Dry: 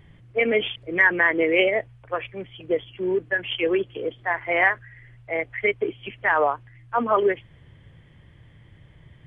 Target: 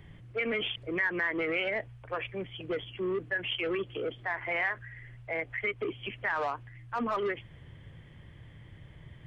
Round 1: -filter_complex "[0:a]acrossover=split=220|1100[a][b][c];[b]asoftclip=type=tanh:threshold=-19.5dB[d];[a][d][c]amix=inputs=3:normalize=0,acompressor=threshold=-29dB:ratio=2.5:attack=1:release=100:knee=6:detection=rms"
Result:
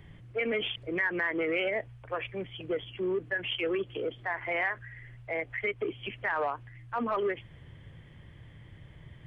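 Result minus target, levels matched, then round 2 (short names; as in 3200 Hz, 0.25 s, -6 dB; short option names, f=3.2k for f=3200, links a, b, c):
soft clip: distortion -7 dB
-filter_complex "[0:a]acrossover=split=220|1100[a][b][c];[b]asoftclip=type=tanh:threshold=-27dB[d];[a][d][c]amix=inputs=3:normalize=0,acompressor=threshold=-29dB:ratio=2.5:attack=1:release=100:knee=6:detection=rms"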